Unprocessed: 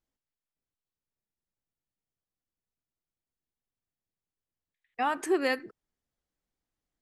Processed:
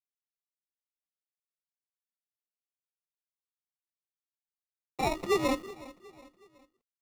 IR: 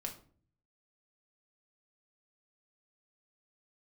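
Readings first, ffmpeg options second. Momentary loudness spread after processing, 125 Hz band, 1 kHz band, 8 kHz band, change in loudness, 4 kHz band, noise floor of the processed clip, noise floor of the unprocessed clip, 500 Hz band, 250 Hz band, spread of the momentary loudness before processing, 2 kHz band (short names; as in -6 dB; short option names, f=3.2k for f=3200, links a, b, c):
20 LU, n/a, -1.5 dB, +1.0 dB, -0.5 dB, +1.5 dB, under -85 dBFS, under -85 dBFS, 0.0 dB, -0.5 dB, 8 LU, -4.5 dB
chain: -filter_complex "[0:a]afreqshift=34,acrusher=samples=28:mix=1:aa=0.000001,highshelf=f=9.6k:g=-11.5,acrusher=bits=8:mix=0:aa=0.000001,asplit=2[a][b];[b]aecho=0:1:368|736|1104:0.112|0.0494|0.0217[c];[a][c]amix=inputs=2:normalize=0"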